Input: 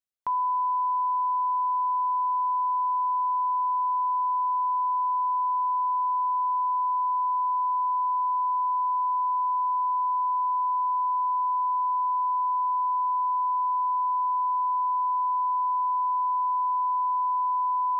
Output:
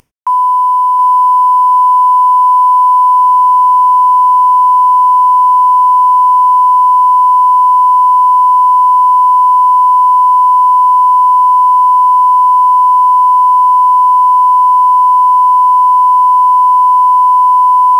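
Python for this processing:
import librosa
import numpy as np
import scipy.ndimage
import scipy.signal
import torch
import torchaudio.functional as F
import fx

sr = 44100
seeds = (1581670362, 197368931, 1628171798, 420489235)

y = fx.cvsd(x, sr, bps=64000)
y = fx.peak_eq(y, sr, hz=1000.0, db=11.5, octaves=0.29)
y = fx.echo_feedback(y, sr, ms=724, feedback_pct=29, wet_db=-5.0)
y = fx.rev_gated(y, sr, seeds[0], gate_ms=120, shape='falling', drr_db=10.0)
y = fx.env_flatten(y, sr, amount_pct=50)
y = y * 10.0 ** (1.5 / 20.0)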